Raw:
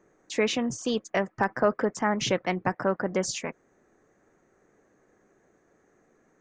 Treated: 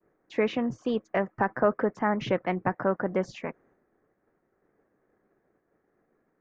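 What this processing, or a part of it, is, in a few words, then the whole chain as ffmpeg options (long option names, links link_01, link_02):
hearing-loss simulation: -af "lowpass=2000,agate=range=-33dB:threshold=-58dB:ratio=3:detection=peak"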